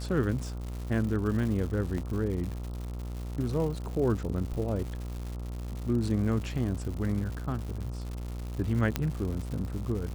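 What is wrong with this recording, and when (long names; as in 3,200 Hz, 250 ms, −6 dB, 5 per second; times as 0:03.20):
mains buzz 60 Hz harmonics 23 −36 dBFS
surface crackle 220 per second −36 dBFS
0:01.98: drop-out 2.6 ms
0:08.96: click −12 dBFS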